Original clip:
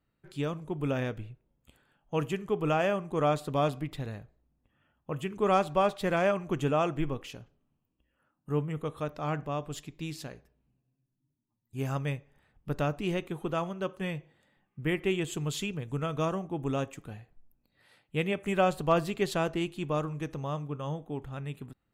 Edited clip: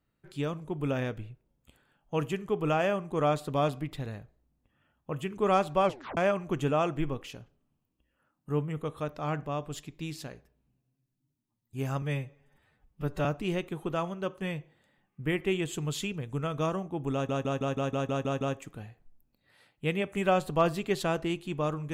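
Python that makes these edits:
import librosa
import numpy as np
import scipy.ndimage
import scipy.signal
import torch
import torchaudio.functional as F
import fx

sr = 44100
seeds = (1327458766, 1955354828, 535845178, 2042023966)

y = fx.edit(x, sr, fx.tape_stop(start_s=5.85, length_s=0.32),
    fx.stretch_span(start_s=12.02, length_s=0.82, factor=1.5),
    fx.stutter(start_s=16.72, slice_s=0.16, count=9), tone=tone)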